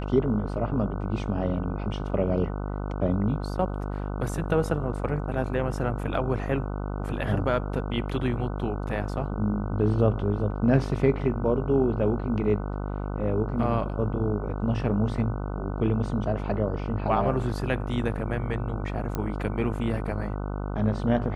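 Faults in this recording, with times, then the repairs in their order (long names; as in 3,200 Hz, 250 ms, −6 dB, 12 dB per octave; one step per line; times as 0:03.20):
mains buzz 50 Hz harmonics 30 −31 dBFS
0:19.15: click −16 dBFS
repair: click removal
hum removal 50 Hz, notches 30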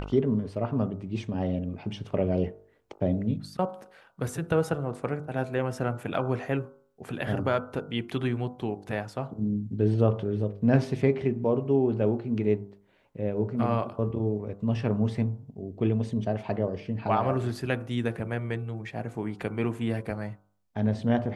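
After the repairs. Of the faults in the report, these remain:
none of them is left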